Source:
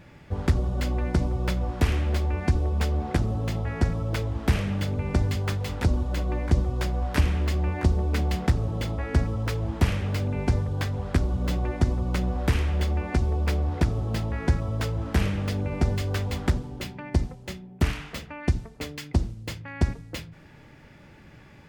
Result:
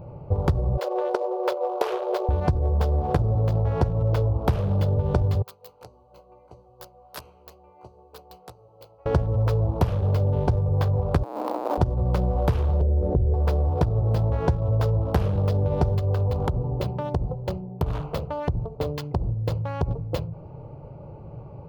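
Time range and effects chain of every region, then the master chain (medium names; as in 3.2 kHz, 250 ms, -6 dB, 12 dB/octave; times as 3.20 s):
0.77–2.29 s: brick-wall FIR high-pass 340 Hz + treble shelf 7.7 kHz -2.5 dB
5.42–9.06 s: differentiator + doubling 16 ms -6 dB + upward expansion, over -51 dBFS
11.23–11.78 s: Schmitt trigger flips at -35 dBFS + rippled Chebyshev high-pass 210 Hz, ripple 9 dB
12.81–13.34 s: four-pole ladder low-pass 640 Hz, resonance 35% + tilt EQ -2 dB/octave + level flattener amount 50%
15.99–19.91 s: compression 4:1, threshold -28 dBFS + delay 71 ms -20.5 dB
whole clip: local Wiener filter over 25 samples; graphic EQ 125/250/500/1000/2000/8000 Hz +8/-10/+9/+5/-10/-9 dB; compression 4:1, threshold -27 dBFS; trim +7.5 dB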